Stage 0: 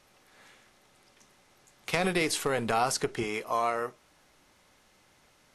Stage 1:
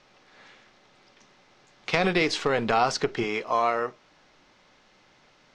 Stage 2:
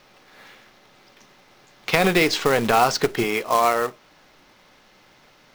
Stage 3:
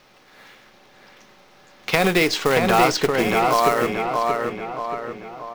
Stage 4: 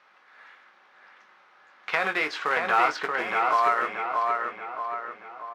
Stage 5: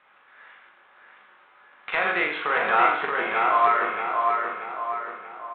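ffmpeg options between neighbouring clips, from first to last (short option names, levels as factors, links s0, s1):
-af "lowpass=f=5600:w=0.5412,lowpass=f=5600:w=1.3066,equalizer=f=68:w=2.3:g=-15,volume=1.68"
-af "acrusher=bits=3:mode=log:mix=0:aa=0.000001,volume=1.78"
-filter_complex "[0:a]asplit=2[s0][s1];[s1]adelay=630,lowpass=f=3100:p=1,volume=0.708,asplit=2[s2][s3];[s3]adelay=630,lowpass=f=3100:p=1,volume=0.51,asplit=2[s4][s5];[s5]adelay=630,lowpass=f=3100:p=1,volume=0.51,asplit=2[s6][s7];[s7]adelay=630,lowpass=f=3100:p=1,volume=0.51,asplit=2[s8][s9];[s9]adelay=630,lowpass=f=3100:p=1,volume=0.51,asplit=2[s10][s11];[s11]adelay=630,lowpass=f=3100:p=1,volume=0.51,asplit=2[s12][s13];[s13]adelay=630,lowpass=f=3100:p=1,volume=0.51[s14];[s0][s2][s4][s6][s8][s10][s12][s14]amix=inputs=8:normalize=0"
-filter_complex "[0:a]bandpass=f=1400:t=q:w=1.7:csg=0,asplit=2[s0][s1];[s1]adelay=20,volume=0.376[s2];[s0][s2]amix=inputs=2:normalize=0"
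-filter_complex "[0:a]asplit=2[s0][s1];[s1]aecho=0:1:40|86|138.9|199.7|269.7:0.631|0.398|0.251|0.158|0.1[s2];[s0][s2]amix=inputs=2:normalize=0" -ar 8000 -c:a adpcm_g726 -b:a 40k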